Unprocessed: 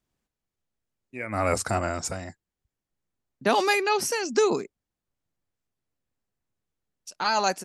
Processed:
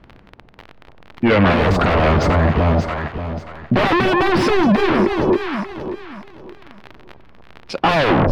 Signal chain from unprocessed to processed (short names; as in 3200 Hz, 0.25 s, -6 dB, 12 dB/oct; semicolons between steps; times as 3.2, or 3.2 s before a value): tape stop at the end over 0.40 s; high shelf 2300 Hz -9.5 dB; soft clip -28 dBFS, distortion -7 dB; crackle 26/s -48 dBFS; in parallel at -4 dB: sine folder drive 11 dB, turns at -26.5 dBFS; on the sum: air absorption 330 m; echo with dull and thin repeats by turns 0.268 s, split 1000 Hz, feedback 52%, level -4.5 dB; speed mistake 48 kHz file played as 44.1 kHz; maximiser +30 dB; gain -7.5 dB